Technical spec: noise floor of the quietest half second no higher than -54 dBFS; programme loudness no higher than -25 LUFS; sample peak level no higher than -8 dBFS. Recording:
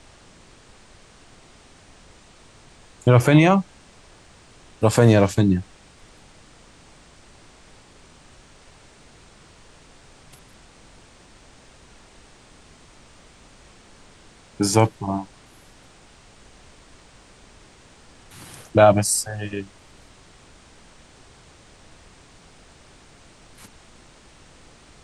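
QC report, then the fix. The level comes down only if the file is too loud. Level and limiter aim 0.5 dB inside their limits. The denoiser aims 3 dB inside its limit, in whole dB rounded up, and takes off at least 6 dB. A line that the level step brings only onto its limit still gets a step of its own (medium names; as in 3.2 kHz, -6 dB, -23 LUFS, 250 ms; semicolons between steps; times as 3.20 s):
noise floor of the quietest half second -50 dBFS: fail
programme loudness -19.0 LUFS: fail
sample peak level -4.0 dBFS: fail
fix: trim -6.5 dB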